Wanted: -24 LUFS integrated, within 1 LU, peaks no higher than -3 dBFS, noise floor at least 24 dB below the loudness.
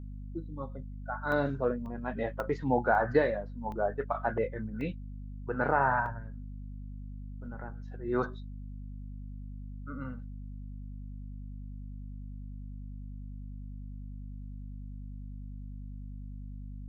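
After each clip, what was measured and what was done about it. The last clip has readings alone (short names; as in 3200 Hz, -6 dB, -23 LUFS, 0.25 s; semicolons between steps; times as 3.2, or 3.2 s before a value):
dropouts 7; longest dropout 1.1 ms; hum 50 Hz; harmonics up to 250 Hz; hum level -39 dBFS; loudness -35.5 LUFS; peak -12.5 dBFS; loudness target -24.0 LUFS
-> interpolate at 1.32/1.86/2.4/2.95/3.72/4.81/6.06, 1.1 ms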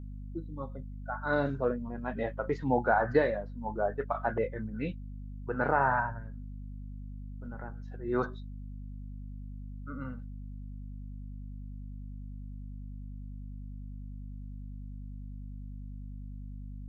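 dropouts 0; hum 50 Hz; harmonics up to 250 Hz; hum level -39 dBFS
-> de-hum 50 Hz, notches 5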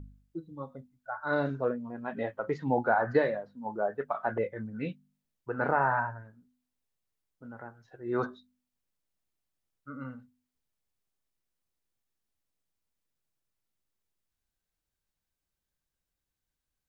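hum none; loudness -31.5 LUFS; peak -13.0 dBFS; loudness target -24.0 LUFS
-> gain +7.5 dB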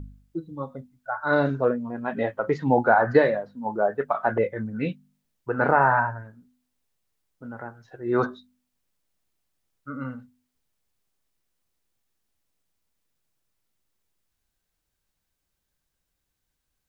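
loudness -24.5 LUFS; peak -5.5 dBFS; noise floor -80 dBFS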